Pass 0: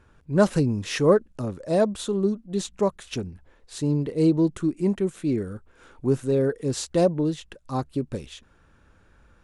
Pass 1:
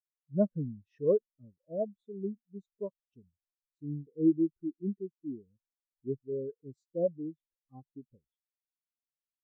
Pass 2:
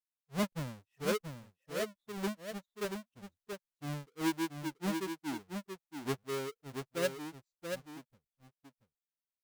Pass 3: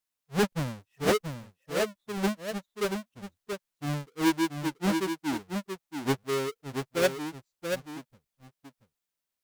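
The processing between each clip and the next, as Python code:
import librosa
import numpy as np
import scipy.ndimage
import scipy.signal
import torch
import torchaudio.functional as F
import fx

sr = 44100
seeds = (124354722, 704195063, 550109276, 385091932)

y1 = fx.spectral_expand(x, sr, expansion=2.5)
y1 = F.gain(torch.from_numpy(y1), -8.5).numpy()
y2 = fx.halfwave_hold(y1, sr)
y2 = fx.rider(y2, sr, range_db=4, speed_s=0.5)
y2 = y2 + 10.0 ** (-6.0 / 20.0) * np.pad(y2, (int(681 * sr / 1000.0), 0))[:len(y2)]
y2 = F.gain(torch.from_numpy(y2), -7.5).numpy()
y3 = fx.doppler_dist(y2, sr, depth_ms=0.55)
y3 = F.gain(torch.from_numpy(y3), 8.0).numpy()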